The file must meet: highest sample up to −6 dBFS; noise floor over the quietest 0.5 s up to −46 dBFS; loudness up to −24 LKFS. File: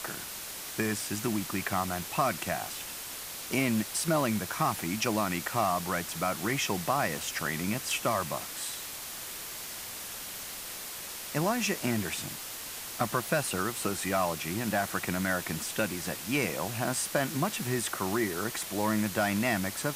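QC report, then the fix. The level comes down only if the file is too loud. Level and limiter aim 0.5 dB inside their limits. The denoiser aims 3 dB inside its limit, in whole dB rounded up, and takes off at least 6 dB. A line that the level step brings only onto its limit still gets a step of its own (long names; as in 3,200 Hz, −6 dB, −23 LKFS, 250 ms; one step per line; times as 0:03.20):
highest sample −12.0 dBFS: in spec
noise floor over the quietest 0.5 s −41 dBFS: out of spec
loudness −31.0 LKFS: in spec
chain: broadband denoise 8 dB, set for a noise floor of −41 dBFS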